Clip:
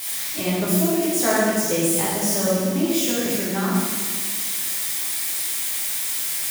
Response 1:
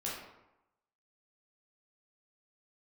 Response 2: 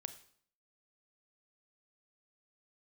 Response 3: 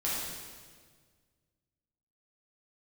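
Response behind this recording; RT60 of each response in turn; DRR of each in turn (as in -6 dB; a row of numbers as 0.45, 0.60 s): 3; 0.90, 0.55, 1.7 s; -6.0, 10.0, -8.0 dB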